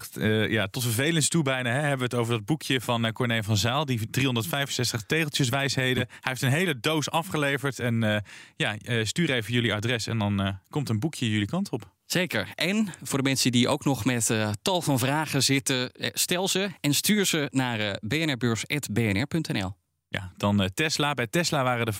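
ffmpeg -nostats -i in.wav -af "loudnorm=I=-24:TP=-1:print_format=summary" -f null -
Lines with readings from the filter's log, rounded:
Input Integrated:    -25.8 LUFS
Input True Peak:      -9.9 dBTP
Input LRA:             2.4 LU
Input Threshold:     -35.9 LUFS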